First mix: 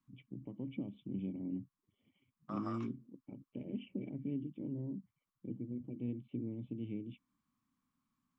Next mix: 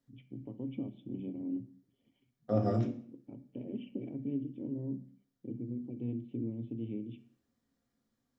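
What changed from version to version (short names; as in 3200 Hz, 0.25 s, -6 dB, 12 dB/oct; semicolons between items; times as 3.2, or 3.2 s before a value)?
second voice: remove resonant high-pass 1100 Hz, resonance Q 7; reverb: on, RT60 0.55 s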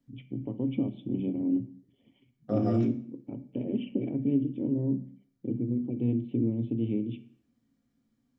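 first voice +9.5 dB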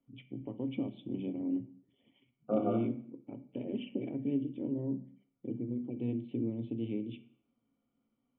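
first voice: add low shelf 360 Hz -10 dB; second voice: add brick-wall FIR band-pass 190–1500 Hz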